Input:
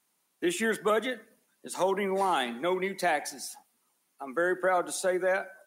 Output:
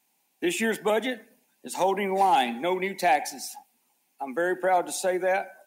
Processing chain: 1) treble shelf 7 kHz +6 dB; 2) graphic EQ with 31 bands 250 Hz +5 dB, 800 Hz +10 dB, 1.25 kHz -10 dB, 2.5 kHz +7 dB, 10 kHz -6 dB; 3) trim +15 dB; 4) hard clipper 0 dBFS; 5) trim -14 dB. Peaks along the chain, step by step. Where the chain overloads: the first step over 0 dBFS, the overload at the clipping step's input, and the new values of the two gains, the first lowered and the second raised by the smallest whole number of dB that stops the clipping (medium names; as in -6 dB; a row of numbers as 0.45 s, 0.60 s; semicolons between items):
-15.5 dBFS, -12.0 dBFS, +3.0 dBFS, 0.0 dBFS, -14.0 dBFS; step 3, 3.0 dB; step 3 +12 dB, step 5 -11 dB